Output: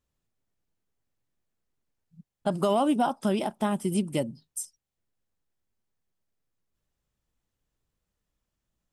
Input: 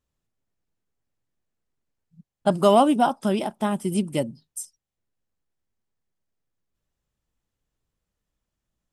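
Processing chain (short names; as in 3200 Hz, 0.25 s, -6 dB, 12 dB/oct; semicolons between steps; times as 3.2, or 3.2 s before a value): in parallel at 0 dB: compressor, threshold -25 dBFS, peak gain reduction 13 dB; on the sum: limiter -8.5 dBFS, peak gain reduction 5.5 dB; gain -6.5 dB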